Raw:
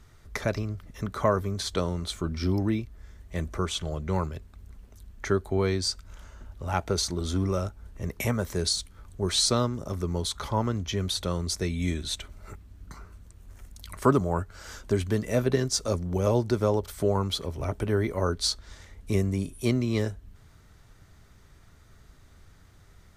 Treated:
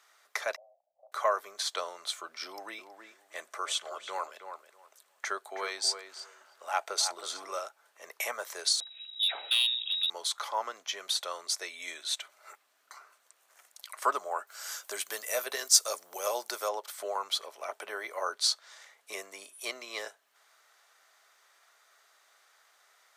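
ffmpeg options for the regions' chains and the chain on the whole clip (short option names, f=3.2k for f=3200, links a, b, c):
-filter_complex "[0:a]asettb=1/sr,asplit=3[a][b][c];[a]atrim=end=0.564[d];[b]atrim=start=0.56:end=1.12,asetpts=PTS-STARTPTS,afade=t=in:d=0.004:c=qsin,afade=t=out:st=0.556:d=0.004:c=qsin,agate=range=-33dB:threshold=-39dB:ratio=3:release=100:detection=peak,asuperpass=centerf=660:order=8:qfactor=2.6,asplit=2[e][f];[f]adelay=34,volume=-12.5dB[g];[e][g]amix=inputs=2:normalize=0,atrim=end_sample=24696[h];[c]atrim=start=1.116[i];[d][h]acrossfade=d=0.004:c1=hsin:c2=qsin[j];[j][i]acrossfade=d=0.004:c1=qsin:c2=hsin,asettb=1/sr,asplit=3[k][l][m];[k]atrim=end=2.464[n];[l]atrim=start=2.46:end=7.59,asetpts=PTS-STARTPTS,afade=t=in:d=0.004:c=qsin,afade=t=out:st=5.126:d=0.004:c=qsin,equalizer=f=8.2k:t=o:w=0.27:g=4,asplit=2[o][p];[p]adelay=321,lowpass=f=1.9k:p=1,volume=-7.5dB,asplit=2[q][r];[r]adelay=321,lowpass=f=1.9k:p=1,volume=0.18,asplit=2[s][t];[t]adelay=321,lowpass=f=1.9k:p=1,volume=0.18[u];[o][q][s][u]amix=inputs=4:normalize=0,atrim=end_sample=226233[v];[m]atrim=start=7.586[w];[n][v]acrossfade=d=0.004:c1=hsin:c2=qsin[x];[x][w]acrossfade=d=0.004:c1=qsin:c2=hsin,asettb=1/sr,asplit=3[y][z][aa];[y]atrim=end=8.804[ab];[z]atrim=start=8.8:end=10.1,asetpts=PTS-STARTPTS,afade=t=in:d=0.004:c=qsin,afade=t=out:st=1.296:d=0.004:c=qsin,lowpass=f=3.3k:t=q:w=0.5098,lowpass=f=3.3k:t=q:w=0.6013,lowpass=f=3.3k:t=q:w=0.9,lowpass=f=3.3k:t=q:w=2.563,afreqshift=-3900,asoftclip=type=hard:threshold=-21dB[ac];[aa]atrim=start=10.096[ad];[ab][ac]acrossfade=d=0.004:c1=hsin:c2=qsin[ae];[ae][ad]acrossfade=d=0.004:c1=qsin:c2=hsin,asettb=1/sr,asplit=3[af][ag][ah];[af]atrim=end=14.474[ai];[ag]atrim=start=14.47:end=16.69,asetpts=PTS-STARTPTS,afade=t=in:d=0.004:c=qsin,afade=t=out:st=2.216:d=0.004:c=qsin,highpass=58,aemphasis=mode=production:type=50fm[aj];[ah]atrim=start=16.686[ak];[ai][aj]acrossfade=d=0.004:c1=hsin:c2=qsin[al];[al][ak]acrossfade=d=0.004:c1=qsin:c2=hsin,highpass=f=650:w=0.5412,highpass=f=650:w=1.3066,bandreject=f=920:w=17"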